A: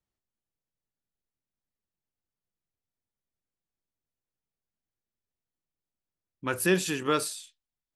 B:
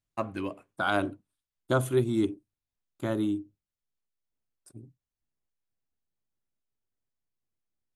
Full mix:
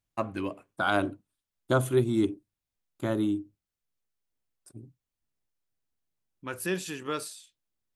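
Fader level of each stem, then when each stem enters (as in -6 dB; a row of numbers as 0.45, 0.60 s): -6.5, +1.0 dB; 0.00, 0.00 s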